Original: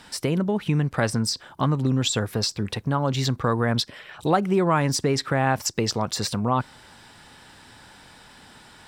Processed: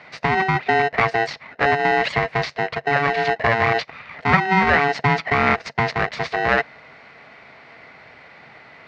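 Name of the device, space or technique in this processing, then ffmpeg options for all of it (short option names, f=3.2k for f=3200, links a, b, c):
ring modulator pedal into a guitar cabinet: -af "aeval=exprs='val(0)*sgn(sin(2*PI*570*n/s))':c=same,highpass=76,equalizer=f=140:t=q:w=4:g=7,equalizer=f=330:t=q:w=4:g=-9,equalizer=f=620:t=q:w=4:g=5,equalizer=f=2k:t=q:w=4:g=9,equalizer=f=3.3k:t=q:w=4:g=-9,lowpass=f=3.7k:w=0.5412,lowpass=f=3.7k:w=1.3066,volume=3dB"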